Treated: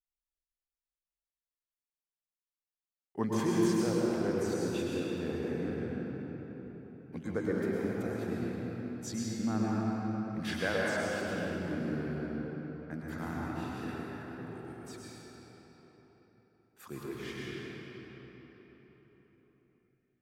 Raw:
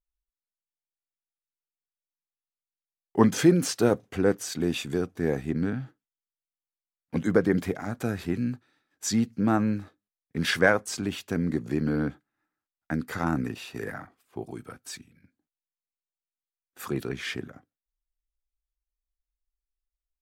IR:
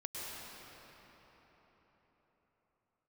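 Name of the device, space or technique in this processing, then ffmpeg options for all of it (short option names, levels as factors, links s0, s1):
cathedral: -filter_complex "[1:a]atrim=start_sample=2205[s0];[0:a][s0]afir=irnorm=-1:irlink=0,volume=0.376"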